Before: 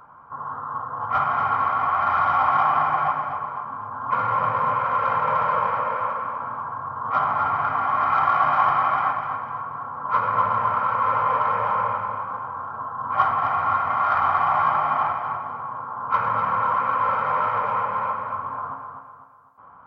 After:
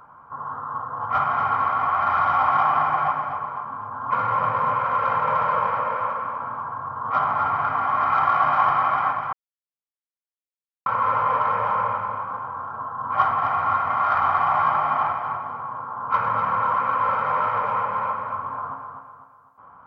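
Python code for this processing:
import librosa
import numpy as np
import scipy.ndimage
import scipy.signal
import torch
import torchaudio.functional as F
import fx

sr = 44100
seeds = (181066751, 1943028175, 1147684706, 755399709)

y = fx.edit(x, sr, fx.silence(start_s=9.33, length_s=1.53), tone=tone)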